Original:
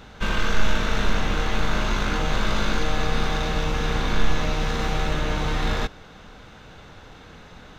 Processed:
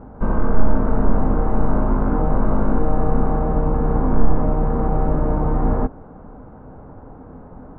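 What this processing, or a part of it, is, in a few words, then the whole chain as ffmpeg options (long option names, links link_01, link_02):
under water: -af "lowpass=frequency=1000:width=0.5412,lowpass=frequency=1000:width=1.3066,equalizer=frequency=260:width_type=o:width=0.22:gain=8,volume=6dB"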